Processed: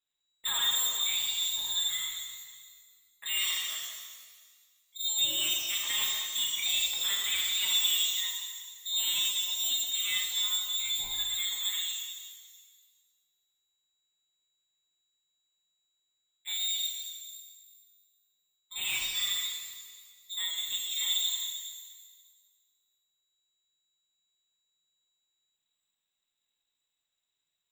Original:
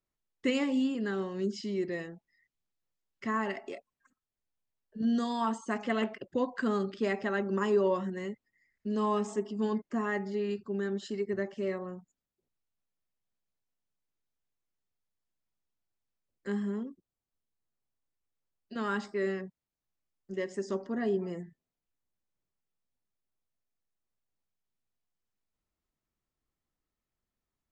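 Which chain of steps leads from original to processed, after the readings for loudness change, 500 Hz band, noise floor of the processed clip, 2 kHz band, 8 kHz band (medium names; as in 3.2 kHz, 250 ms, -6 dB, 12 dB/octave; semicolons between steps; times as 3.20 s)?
+4.5 dB, under -25 dB, -84 dBFS, +2.0 dB, +24.5 dB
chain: saturation -24.5 dBFS, distortion -16 dB; frequency inversion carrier 3.9 kHz; careless resampling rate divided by 4×, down none, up hold; pitch-shifted reverb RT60 1.6 s, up +12 st, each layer -8 dB, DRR -3 dB; trim -2 dB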